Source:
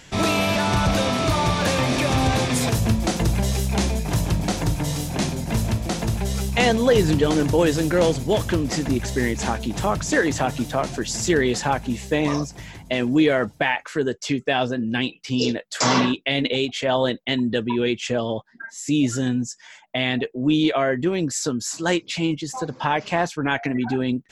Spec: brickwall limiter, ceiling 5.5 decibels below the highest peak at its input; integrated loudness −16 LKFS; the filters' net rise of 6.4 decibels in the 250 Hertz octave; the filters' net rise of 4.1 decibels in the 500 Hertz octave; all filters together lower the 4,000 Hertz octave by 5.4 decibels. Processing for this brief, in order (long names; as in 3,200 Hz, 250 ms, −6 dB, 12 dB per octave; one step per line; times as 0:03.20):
parametric band 250 Hz +7 dB
parametric band 500 Hz +3 dB
parametric band 4,000 Hz −7.5 dB
level +3.5 dB
brickwall limiter −4.5 dBFS